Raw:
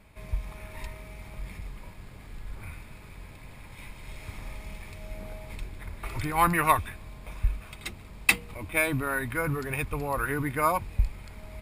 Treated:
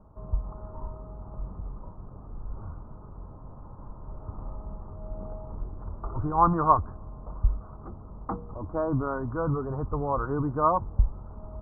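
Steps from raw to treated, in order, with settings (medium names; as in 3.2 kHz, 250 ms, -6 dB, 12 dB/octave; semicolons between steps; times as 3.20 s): steep low-pass 1.3 kHz 72 dB/octave; trim +2.5 dB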